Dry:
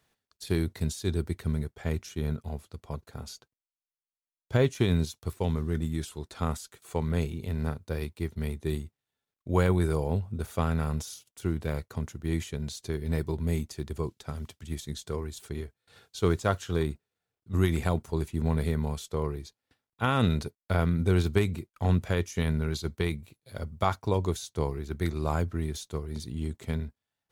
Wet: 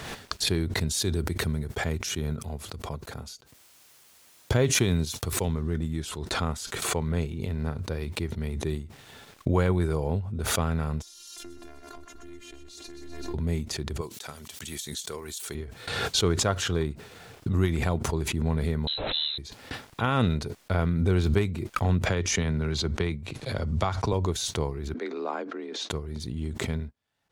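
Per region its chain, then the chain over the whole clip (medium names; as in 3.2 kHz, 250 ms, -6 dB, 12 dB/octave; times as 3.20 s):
0.87–5.48 s: high-pass 44 Hz + treble shelf 7 kHz +9 dB
11.02–13.34 s: compression 3:1, threshold -40 dBFS + robot voice 347 Hz + thinning echo 126 ms, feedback 72%, high-pass 180 Hz, level -9 dB
14.01–15.55 s: RIAA curve recording + band-stop 5 kHz, Q 21
18.87–19.38 s: jump at every zero crossing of -39 dBFS + frequency inversion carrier 4 kHz
22.06–24.13 s: low-pass 8 kHz + three bands compressed up and down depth 70%
24.94–25.90 s: steep high-pass 230 Hz + frequency shift +38 Hz + distance through air 160 m
whole clip: treble shelf 9.6 kHz -11.5 dB; swell ahead of each attack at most 32 dB/s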